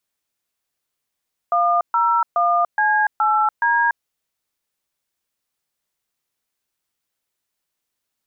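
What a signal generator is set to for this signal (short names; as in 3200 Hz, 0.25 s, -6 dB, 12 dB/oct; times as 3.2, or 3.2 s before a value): DTMF "101C8D", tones 0.289 s, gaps 0.131 s, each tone -17 dBFS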